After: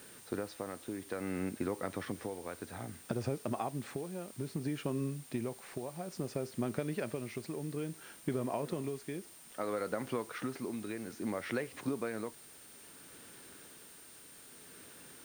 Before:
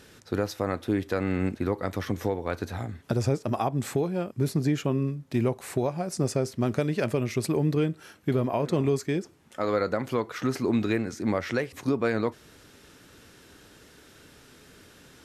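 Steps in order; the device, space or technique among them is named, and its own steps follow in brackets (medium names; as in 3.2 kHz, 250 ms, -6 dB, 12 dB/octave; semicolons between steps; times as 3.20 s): medium wave at night (band-pass 140–4100 Hz; compression, threshold -27 dBFS, peak gain reduction 7 dB; tremolo 0.6 Hz, depth 50%; whistle 9 kHz -53 dBFS; white noise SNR 18 dB); trim -3.5 dB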